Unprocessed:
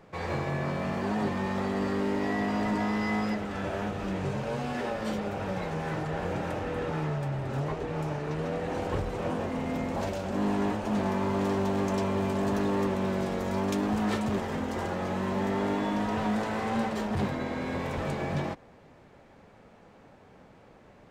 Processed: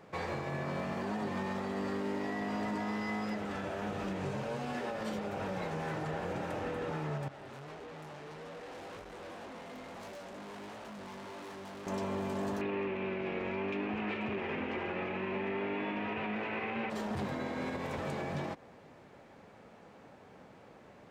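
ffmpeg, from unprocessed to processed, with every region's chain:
ffmpeg -i in.wav -filter_complex "[0:a]asettb=1/sr,asplit=3[link_01][link_02][link_03];[link_01]atrim=end=7.284[link_04];[link_02]atrim=start=7.28:end=11.87,asetpts=PTS-STARTPTS,afade=type=in:duration=0.004:curve=qsin,afade=type=out:start_time=4.586:duration=0.004:curve=qsin,equalizer=frequency=110:width_type=o:width=1.9:gain=-7.5,flanger=delay=17:depth=4.8:speed=1.7,aeval=exprs='(tanh(158*val(0)+0.7)-tanh(0.7))/158':channel_layout=same[link_05];[link_03]atrim=start=11.866[link_06];[link_04][link_05]acrossfade=duration=0.004:curve1=hsin:curve2=qsin[link_07];[link_07][link_06]acrossfade=duration=0.004:curve1=qsin:curve2=hsin,asettb=1/sr,asplit=3[link_08][link_09][link_10];[link_08]atrim=end=12.614[link_11];[link_09]atrim=start=12.61:end=16.9,asetpts=PTS-STARTPTS,afade=type=in:duration=0.004:curve=qsin,afade=type=out:start_time=4.286:duration=0.004:curve=qsin,lowpass=frequency=2500:width_type=q:width=6,equalizer=frequency=370:width_type=o:width=0.44:gain=7.5[link_12];[link_10]atrim=start=16.896[link_13];[link_11][link_12]acrossfade=duration=0.004:curve1=hsin:curve2=qsin[link_14];[link_14][link_13]acrossfade=duration=0.004:curve1=qsin:curve2=hsin,highpass=frequency=130:poles=1,alimiter=level_in=4dB:limit=-24dB:level=0:latency=1:release=182,volume=-4dB" out.wav

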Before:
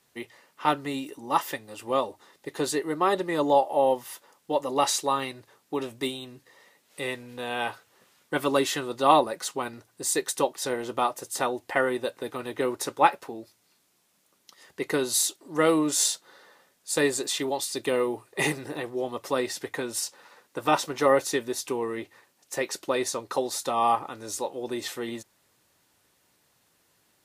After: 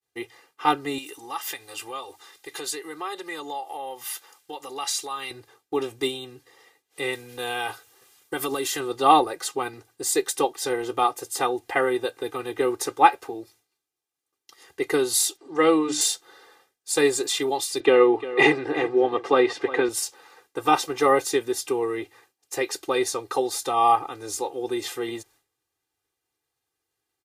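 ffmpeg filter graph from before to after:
ffmpeg -i in.wav -filter_complex "[0:a]asettb=1/sr,asplit=3[link_01][link_02][link_03];[link_01]atrim=end=0.984[link_04];[link_02]atrim=start=0.98:end=5.31,asetpts=PTS-STARTPTS,afade=type=in:duration=0.004:curve=qsin,afade=type=out:start_time=4.326:duration=0.004:curve=qsin,acompressor=threshold=-37dB:ratio=2.5:attack=3.2:release=140:knee=1:detection=peak,tiltshelf=frequency=860:gain=-7[link_05];[link_03]atrim=start=5.306[link_06];[link_04][link_05]acrossfade=duration=0.004:curve1=hsin:curve2=qsin[link_07];[link_07][link_06]acrossfade=duration=0.004:curve1=qsin:curve2=hsin,asettb=1/sr,asplit=3[link_08][link_09][link_10];[link_08]atrim=end=7.134[link_11];[link_09]atrim=start=7.13:end=8.8,asetpts=PTS-STARTPTS,afade=type=in:duration=0.004:curve=qsin,afade=type=out:start_time=1.666:duration=0.004:curve=qsin,aemphasis=mode=production:type=cd,acompressor=threshold=-26dB:ratio=6:attack=3.2:release=140:knee=1:detection=peak[link_12];[link_10]atrim=start=8.796[link_13];[link_11][link_12]acrossfade=duration=0.004:curve1=hsin:curve2=qsin[link_14];[link_14][link_13]acrossfade=duration=0.004:curve1=qsin:curve2=hsin,asettb=1/sr,asplit=3[link_15][link_16][link_17];[link_15]atrim=end=15.374[link_18];[link_16]atrim=start=15.37:end=16.01,asetpts=PTS-STARTPTS,afade=type=in:duration=0.004:curve=qsin,afade=type=out:start_time=0.636:duration=0.004:curve=qsin,lowpass=5900,bandreject=frequency=50:width_type=h:width=6,bandreject=frequency=100:width_type=h:width=6,bandreject=frequency=150:width_type=h:width=6,bandreject=frequency=200:width_type=h:width=6,bandreject=frequency=250:width_type=h:width=6,bandreject=frequency=300:width_type=h:width=6,bandreject=frequency=350:width_type=h:width=6[link_19];[link_17]atrim=start=16.006[link_20];[link_18][link_19]acrossfade=duration=0.004:curve1=hsin:curve2=qsin[link_21];[link_21][link_20]acrossfade=duration=0.004:curve1=qsin:curve2=hsin,asettb=1/sr,asplit=3[link_22][link_23][link_24];[link_22]atrim=end=17.804[link_25];[link_23]atrim=start=17.8:end=19.89,asetpts=PTS-STARTPTS,afade=type=in:duration=0.004:curve=qsin,afade=type=out:start_time=2.086:duration=0.004:curve=qsin,highpass=170,lowpass=3000,acontrast=54,aecho=1:1:352:0.178,atrim=end_sample=92169[link_26];[link_24]atrim=start=19.886[link_27];[link_25][link_26]acrossfade=duration=0.004:curve1=hsin:curve2=qsin[link_28];[link_28][link_27]acrossfade=duration=0.004:curve1=qsin:curve2=hsin,agate=range=-33dB:threshold=-55dB:ratio=3:detection=peak,aecho=1:1:2.5:0.91" out.wav

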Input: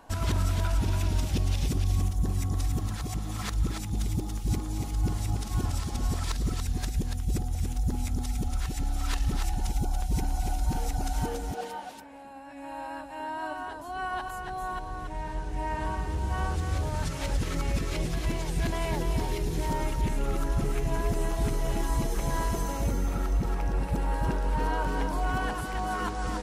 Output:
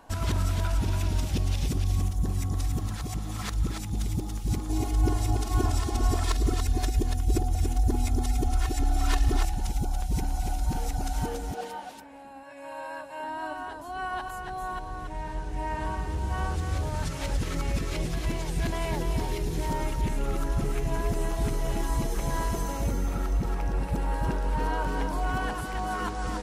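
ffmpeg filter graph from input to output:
ffmpeg -i in.wav -filter_complex "[0:a]asettb=1/sr,asplit=3[link_01][link_02][link_03];[link_01]atrim=end=4.694[link_04];[link_02]atrim=start=4.69:end=9.45,asetpts=PTS-STARTPTS,afade=type=in:duration=0.004:curve=qsin,afade=type=out:start_time=4.756:duration=0.004:curve=qsin,equalizer=frequency=520:width_type=o:width=2.1:gain=5.5,aecho=1:1:2.8:0.84,atrim=end_sample=209916[link_05];[link_03]atrim=start=9.446[link_06];[link_04][link_05]acrossfade=duration=0.004:curve1=hsin:curve2=qsin[link_07];[link_07][link_06]acrossfade=duration=0.004:curve1=qsin:curve2=hsin,asettb=1/sr,asplit=3[link_08][link_09][link_10];[link_08]atrim=end=12.434[link_11];[link_09]atrim=start=12.43:end=13.24,asetpts=PTS-STARTPTS,afade=type=in:duration=0.004:curve=qsin,afade=type=out:start_time=0.806:duration=0.004:curve=qsin,highpass=140,aecho=1:1:1.9:0.56,atrim=end_sample=35721[link_12];[link_10]atrim=start=13.236[link_13];[link_11][link_12]acrossfade=duration=0.004:curve1=hsin:curve2=qsin[link_14];[link_14][link_13]acrossfade=duration=0.004:curve1=qsin:curve2=hsin" out.wav

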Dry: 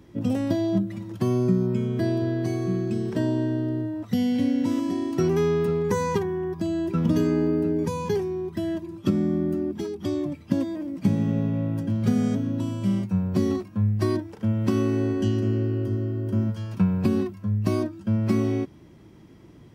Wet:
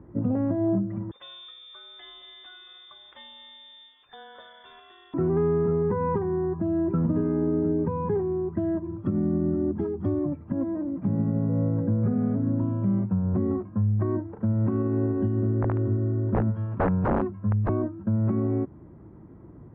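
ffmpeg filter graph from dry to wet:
ffmpeg -i in.wav -filter_complex "[0:a]asettb=1/sr,asplit=3[link_01][link_02][link_03];[link_01]atrim=end=1.114[link_04];[link_02]atrim=start=1.11:end=5.14,asetpts=PTS-STARTPTS,afade=type=in:duration=0.004:curve=qsin,afade=type=out:start_time=4.026:duration=0.004:curve=qsin,lowshelf=frequency=170:width_type=q:width=3:gain=7.5,lowpass=frequency=3100:width_type=q:width=0.5098,lowpass=frequency=3100:width_type=q:width=0.6013,lowpass=frequency=3100:width_type=q:width=0.9,lowpass=frequency=3100:width_type=q:width=2.563,afreqshift=-3700[link_05];[link_03]atrim=start=5.136[link_06];[link_04][link_05]acrossfade=duration=0.004:curve1=hsin:curve2=qsin[link_07];[link_07][link_06]acrossfade=duration=0.004:curve1=qsin:curve2=hsin,asettb=1/sr,asplit=3[link_08][link_09][link_10];[link_08]atrim=end=8.854[link_11];[link_09]atrim=start=8.85:end=10.19,asetpts=PTS-STARTPTS,afade=type=in:duration=0.004:curve=qsin,afade=type=out:start_time=1.336:duration=0.004:curve=qsin,lowpass=frequency=5400:width_type=q:width=6.2,equalizer=frequency=94:width=1.2:gain=5.5[link_12];[link_10]atrim=start=10.186[link_13];[link_11][link_12]acrossfade=duration=0.004:curve1=hsin:curve2=qsin[link_14];[link_14][link_13]acrossfade=duration=0.004:curve1=qsin:curve2=hsin,asettb=1/sr,asplit=3[link_15][link_16][link_17];[link_15]atrim=end=11.494[link_18];[link_16]atrim=start=11.49:end=12.14,asetpts=PTS-STARTPTS,afade=type=in:duration=0.004:curve=qsin,afade=type=out:start_time=0.646:duration=0.004:curve=qsin,asuperstop=centerf=4200:order=8:qfactor=1.1,aeval=exprs='val(0)+0.0158*sin(2*PI*490*n/s)':channel_layout=same[link_19];[link_17]atrim=start=12.136[link_20];[link_18][link_19]acrossfade=duration=0.004:curve1=hsin:curve2=qsin[link_21];[link_21][link_20]acrossfade=duration=0.004:curve1=qsin:curve2=hsin,asettb=1/sr,asplit=3[link_22][link_23][link_24];[link_22]atrim=end=15.624[link_25];[link_23]atrim=start=15.62:end=17.69,asetpts=PTS-STARTPTS,afade=type=in:duration=0.004:curve=qsin,afade=type=out:start_time=2.066:duration=0.004:curve=qsin,aemphasis=mode=production:type=75fm,aeval=exprs='(mod(7.5*val(0)+1,2)-1)/7.5':channel_layout=same[link_26];[link_24]atrim=start=17.686[link_27];[link_25][link_26]acrossfade=duration=0.004:curve1=hsin:curve2=qsin[link_28];[link_28][link_27]acrossfade=duration=0.004:curve1=qsin:curve2=hsin,lowpass=frequency=1400:width=0.5412,lowpass=frequency=1400:width=1.3066,equalizer=frequency=66:width_type=o:width=1.7:gain=3.5,alimiter=limit=-18dB:level=0:latency=1:release=174,volume=1.5dB" out.wav

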